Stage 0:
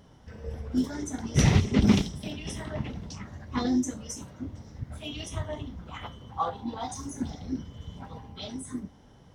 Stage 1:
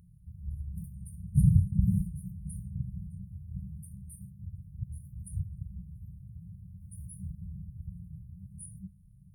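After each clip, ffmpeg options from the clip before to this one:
-af "afftfilt=real='re*(1-between(b*sr/4096,200,8900))':imag='im*(1-between(b*sr/4096,200,8900))':win_size=4096:overlap=0.75"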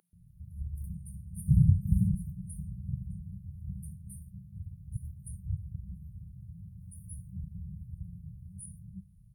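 -filter_complex "[0:a]acrossover=split=330[a][b];[a]adelay=130[c];[c][b]amix=inputs=2:normalize=0"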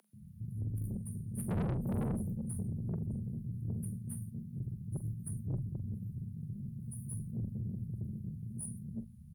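-filter_complex "[0:a]aeval=exprs='(tanh(70.8*val(0)+0.25)-tanh(0.25))/70.8':c=same,afreqshift=35,asplit=2[a][b];[b]adelay=44,volume=-13dB[c];[a][c]amix=inputs=2:normalize=0,volume=5dB"

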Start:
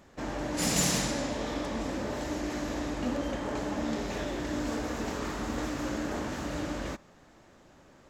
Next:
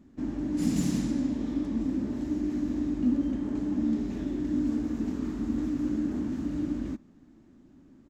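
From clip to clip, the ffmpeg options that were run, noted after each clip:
-af "firequalizer=gain_entry='entry(150,0);entry(260,10);entry(490,-13)':delay=0.05:min_phase=1"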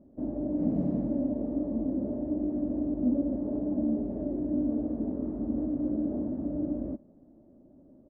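-af "lowpass=f=600:t=q:w=6.3,volume=-3dB"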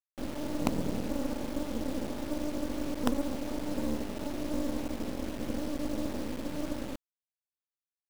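-af "acrusher=bits=4:dc=4:mix=0:aa=0.000001"

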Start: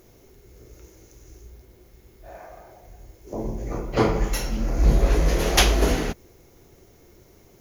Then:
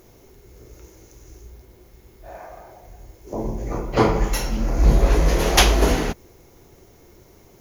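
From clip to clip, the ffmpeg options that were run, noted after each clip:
-af "equalizer=f=940:w=2.5:g=3.5,volume=2.5dB"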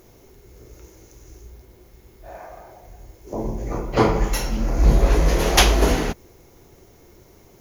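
-af anull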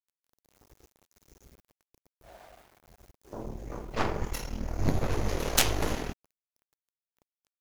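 -af "aeval=exprs='val(0)*gte(abs(val(0)),0.0106)':c=same,aeval=exprs='0.891*(cos(1*acos(clip(val(0)/0.891,-1,1)))-cos(1*PI/2))+0.398*(cos(3*acos(clip(val(0)/0.891,-1,1)))-cos(3*PI/2))+0.0398*(cos(4*acos(clip(val(0)/0.891,-1,1)))-cos(4*PI/2))+0.1*(cos(6*acos(clip(val(0)/0.891,-1,1)))-cos(6*PI/2))':c=same,volume=-3.5dB"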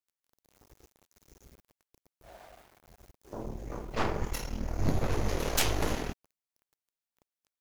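-af "asoftclip=type=tanh:threshold=-14.5dB"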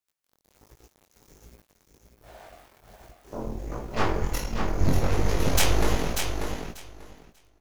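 -filter_complex "[0:a]flanger=delay=17:depth=5.8:speed=1.3,asplit=2[a][b];[b]aecho=0:1:590|1180|1770:0.501|0.0802|0.0128[c];[a][c]amix=inputs=2:normalize=0,volume=7.5dB"

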